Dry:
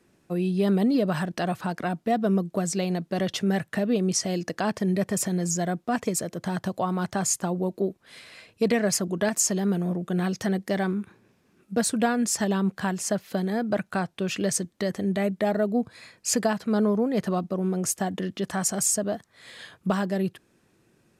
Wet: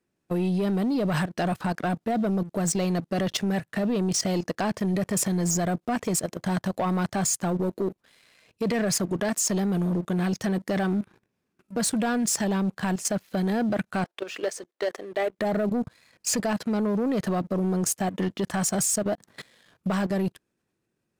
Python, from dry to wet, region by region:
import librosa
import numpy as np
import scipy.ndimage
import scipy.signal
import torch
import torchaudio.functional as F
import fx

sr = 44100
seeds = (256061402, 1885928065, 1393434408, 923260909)

y = fx.chain(x, sr, fx.highpass(hz=370.0, slope=24),
    fx.high_shelf(hz=5200.0, db=-10.0), at=(14.04, 15.39))
y = fx.chain(y, sr, fx.highpass(hz=140.0, slope=12),
    fx.low_shelf(hz=430.0, db=9.5),
    fx.over_compress(threshold_db=-51.0, ratio=-1.0), at=(19.15, 19.74))
y = fx.level_steps(y, sr, step_db=15)
y = fx.leveller(y, sr, passes=2)